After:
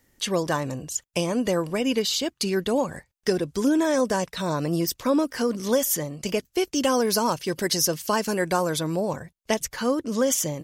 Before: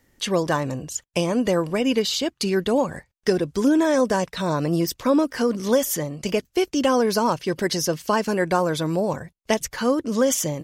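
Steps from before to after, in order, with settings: high shelf 5400 Hz +6 dB, from 6.74 s +11.5 dB, from 8.79 s +4 dB; gain -3 dB

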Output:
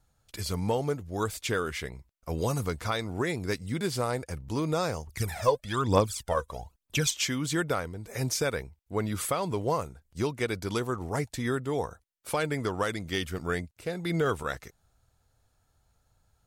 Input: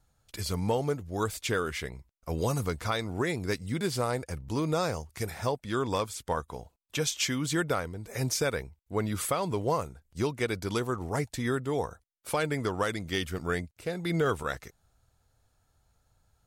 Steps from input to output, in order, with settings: 5.07–7.11 phaser 1.1 Hz, delay 2.1 ms, feedback 73%

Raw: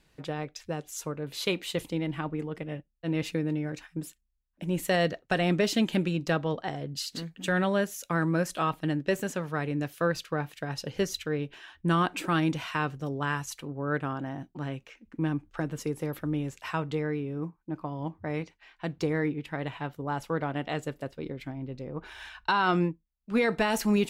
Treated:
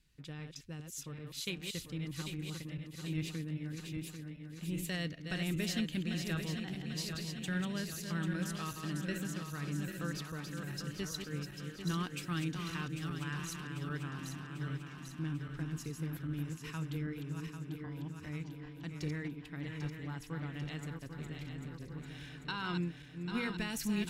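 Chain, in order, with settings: regenerating reverse delay 0.397 s, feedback 77%, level -6 dB; passive tone stack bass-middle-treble 6-0-2; gain +8.5 dB

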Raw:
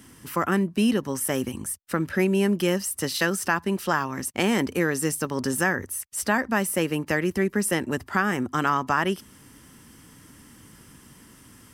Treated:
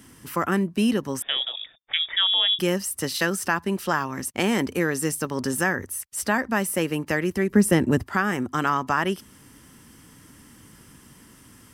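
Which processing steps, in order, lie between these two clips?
1.22–2.59 inverted band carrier 3600 Hz; 7.5–8.03 low shelf 430 Hz +11 dB

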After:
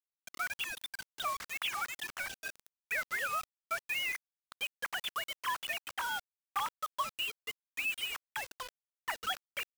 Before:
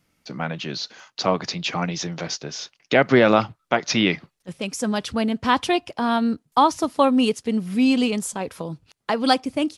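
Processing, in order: sine-wave speech; HPF 1100 Hz 24 dB/oct; sample leveller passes 1; compressor 6:1, threshold -35 dBFS, peak gain reduction 19 dB; bit-crush 7-bit; gain +1 dB

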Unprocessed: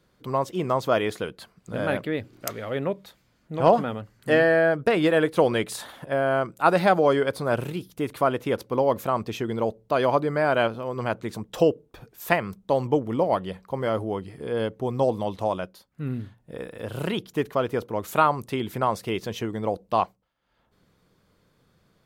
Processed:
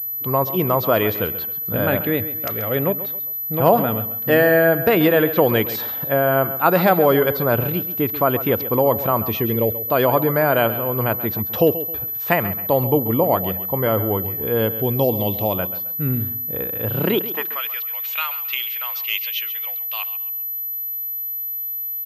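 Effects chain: 9.29–9.89 spectral gain 640–1700 Hz -9 dB; 14.77–15.54 EQ curve 360 Hz 0 dB, 1200 Hz -7 dB, 2700 Hz +5 dB; in parallel at -0.5 dB: limiter -15.5 dBFS, peak gain reduction 11 dB; on the sum: high-pass sweep 73 Hz -> 2600 Hz, 16.79–17.65; on a send: feedback echo 0.134 s, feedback 35%, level -13.5 dB; on the sum: pulse-width modulation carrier 12000 Hz

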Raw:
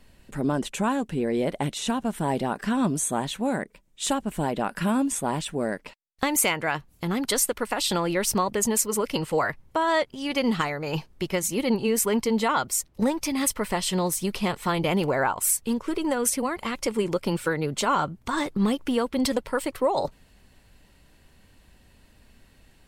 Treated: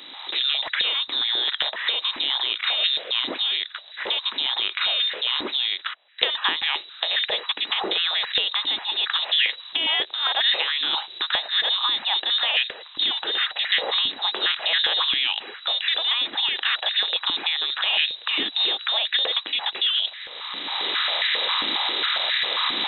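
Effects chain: per-bin compression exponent 0.6; recorder AGC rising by 22 dB/s; inverted band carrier 3900 Hz; stepped high-pass 7.4 Hz 290–1800 Hz; gain -4 dB

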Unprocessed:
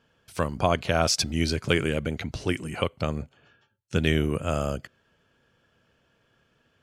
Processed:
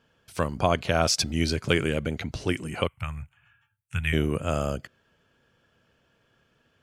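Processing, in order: 2.87–4.13 EQ curve 120 Hz 0 dB, 290 Hz -24 dB, 490 Hz -26 dB, 880 Hz -5 dB, 1400 Hz -2 dB, 2500 Hz +2 dB, 4700 Hz -21 dB, 8800 Hz +2 dB

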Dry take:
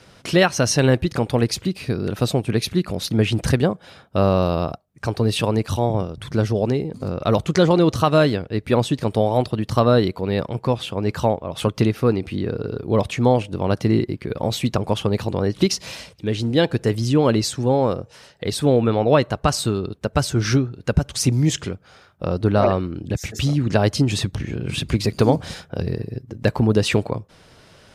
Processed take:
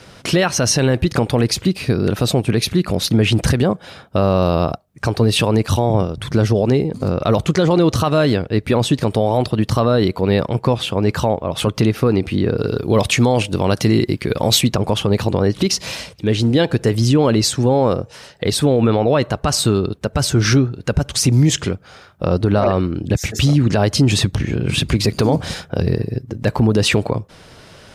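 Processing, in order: limiter -13 dBFS, peak gain reduction 9.5 dB; 12.58–14.61 high shelf 2500 Hz +9 dB; gain +7 dB

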